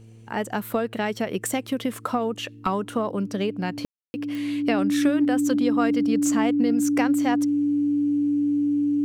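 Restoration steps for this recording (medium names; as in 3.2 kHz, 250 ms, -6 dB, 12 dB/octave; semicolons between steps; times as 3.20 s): de-click; de-hum 112.4 Hz, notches 4; band-stop 290 Hz, Q 30; room tone fill 3.85–4.14 s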